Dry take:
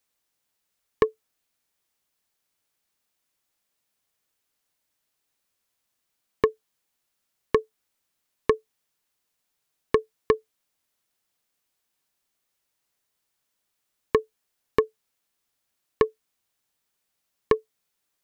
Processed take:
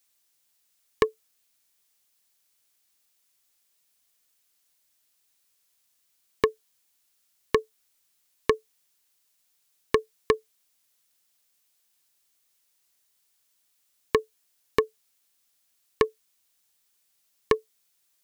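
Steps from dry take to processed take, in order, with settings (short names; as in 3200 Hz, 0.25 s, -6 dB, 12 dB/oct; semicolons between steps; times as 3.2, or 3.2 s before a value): high shelf 2400 Hz +11 dB; gain -2 dB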